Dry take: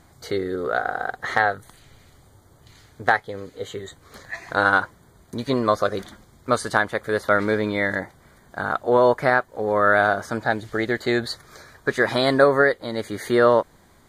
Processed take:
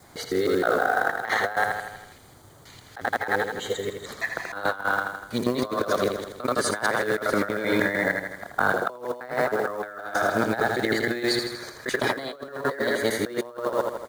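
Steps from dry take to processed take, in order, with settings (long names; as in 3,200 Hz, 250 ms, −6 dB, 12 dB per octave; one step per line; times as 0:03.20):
reversed piece by piece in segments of 156 ms
on a send: repeating echo 81 ms, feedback 57%, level −7 dB
on the sum: log-companded quantiser 6 bits
low-shelf EQ 130 Hz −10.5 dB
compressor whose output falls as the input rises −25 dBFS, ratio −0.5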